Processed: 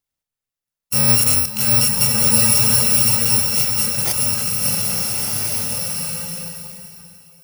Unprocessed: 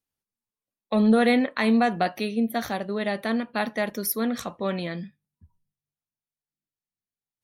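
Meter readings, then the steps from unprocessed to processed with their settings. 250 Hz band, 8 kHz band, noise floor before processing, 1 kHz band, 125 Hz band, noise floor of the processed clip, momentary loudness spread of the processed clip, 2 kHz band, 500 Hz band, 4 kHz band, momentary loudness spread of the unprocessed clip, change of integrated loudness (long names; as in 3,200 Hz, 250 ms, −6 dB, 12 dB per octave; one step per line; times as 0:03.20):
−4.5 dB, +25.0 dB, below −85 dBFS, −2.5 dB, +12.5 dB, below −85 dBFS, 12 LU, +2.0 dB, −5.0 dB, +16.0 dB, 10 LU, +10.5 dB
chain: samples in bit-reversed order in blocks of 128 samples
slow-attack reverb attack 1,420 ms, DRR −2 dB
level +4 dB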